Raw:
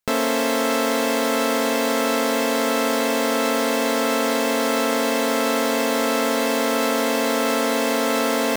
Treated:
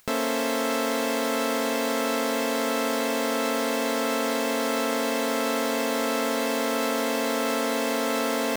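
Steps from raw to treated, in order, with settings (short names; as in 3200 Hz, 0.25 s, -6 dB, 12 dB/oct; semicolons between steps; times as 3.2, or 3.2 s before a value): upward compressor, threshold -32 dBFS; gain -5 dB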